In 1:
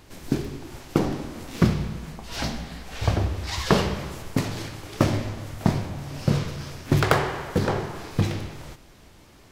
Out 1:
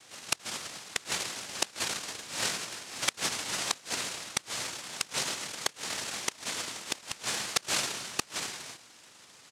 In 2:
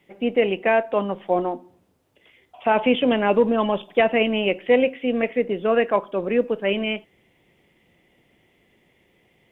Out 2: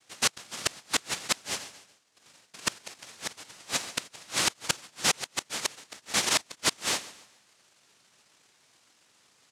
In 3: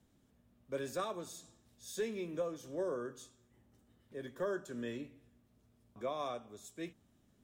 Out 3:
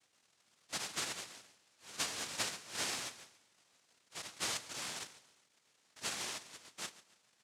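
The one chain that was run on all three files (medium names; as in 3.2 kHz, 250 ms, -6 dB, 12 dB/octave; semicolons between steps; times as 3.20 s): noise-vocoded speech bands 1; feedback delay 141 ms, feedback 37%, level -18 dB; inverted gate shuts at -9 dBFS, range -29 dB; trim -2 dB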